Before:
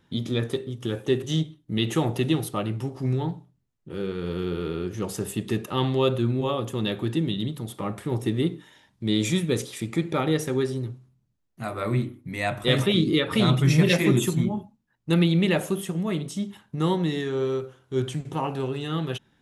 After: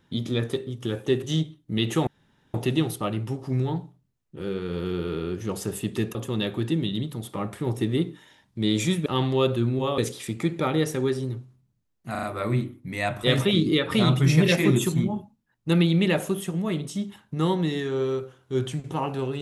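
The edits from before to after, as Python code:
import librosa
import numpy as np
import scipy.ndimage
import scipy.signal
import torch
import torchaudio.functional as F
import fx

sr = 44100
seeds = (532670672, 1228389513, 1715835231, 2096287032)

y = fx.edit(x, sr, fx.insert_room_tone(at_s=2.07, length_s=0.47),
    fx.move(start_s=5.68, length_s=0.92, to_s=9.51),
    fx.stutter(start_s=11.64, slice_s=0.04, count=4), tone=tone)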